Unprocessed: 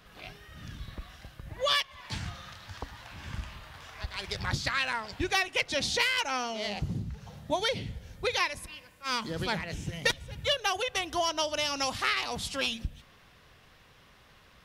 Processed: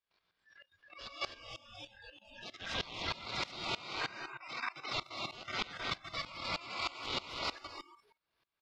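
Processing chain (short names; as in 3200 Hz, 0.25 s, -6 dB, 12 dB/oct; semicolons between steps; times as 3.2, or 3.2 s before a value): per-bin compression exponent 0.6; thinning echo 0.446 s, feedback 26%, high-pass 290 Hz, level -6 dB; ring modulator 1700 Hz; notch 1800 Hz, Q 11; de-hum 62.8 Hz, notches 5; spectral gate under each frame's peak -30 dB strong; resonant high shelf 5900 Hz -11 dB, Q 1.5; tempo 1.7×; on a send at -2.5 dB: reverb RT60 3.6 s, pre-delay 95 ms; on the sum: spectral noise reduction 28 dB; level quantiser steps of 11 dB; dB-ramp tremolo swelling 3.2 Hz, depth 21 dB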